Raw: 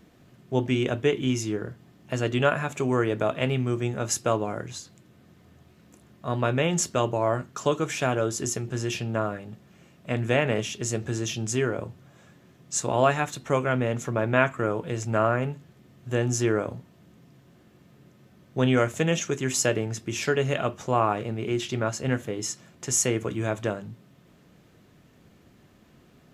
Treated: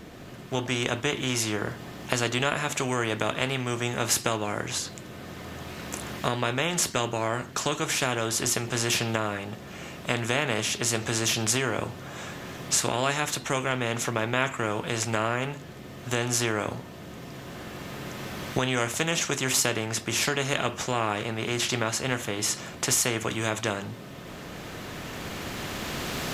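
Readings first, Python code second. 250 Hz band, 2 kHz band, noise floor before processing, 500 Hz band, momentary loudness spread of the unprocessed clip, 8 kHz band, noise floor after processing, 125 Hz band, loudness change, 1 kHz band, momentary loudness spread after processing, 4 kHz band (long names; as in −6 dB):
−3.0 dB, +2.5 dB, −57 dBFS, −4.0 dB, 10 LU, +3.5 dB, −42 dBFS, −3.5 dB, −1.0 dB, −0.5 dB, 14 LU, +7.0 dB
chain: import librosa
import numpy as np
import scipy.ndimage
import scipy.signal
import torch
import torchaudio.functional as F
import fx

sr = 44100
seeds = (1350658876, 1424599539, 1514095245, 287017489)

y = fx.recorder_agc(x, sr, target_db=-11.0, rise_db_per_s=7.5, max_gain_db=30)
y = fx.high_shelf(y, sr, hz=8700.0, db=-3.5)
y = fx.spectral_comp(y, sr, ratio=2.0)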